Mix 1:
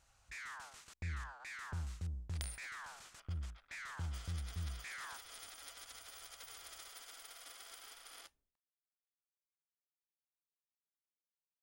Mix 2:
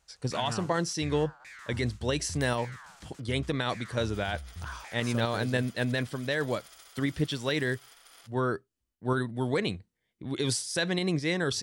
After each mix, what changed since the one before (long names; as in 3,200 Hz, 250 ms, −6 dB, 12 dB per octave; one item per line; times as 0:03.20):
speech: unmuted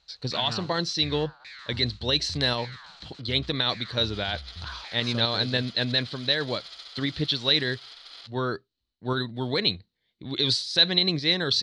second sound +3.5 dB
master: add low-pass with resonance 4,100 Hz, resonance Q 8.1